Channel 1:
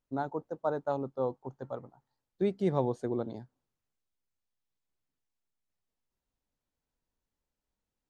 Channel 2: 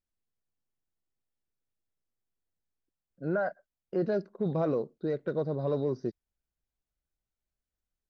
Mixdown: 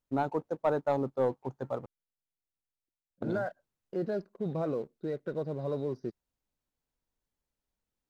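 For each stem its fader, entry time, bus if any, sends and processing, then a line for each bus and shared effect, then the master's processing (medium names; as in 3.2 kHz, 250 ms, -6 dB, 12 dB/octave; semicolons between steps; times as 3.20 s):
+0.5 dB, 0.00 s, muted 1.86–3.22 s, no send, none
-7.5 dB, 0.00 s, no send, none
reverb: none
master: waveshaping leveller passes 1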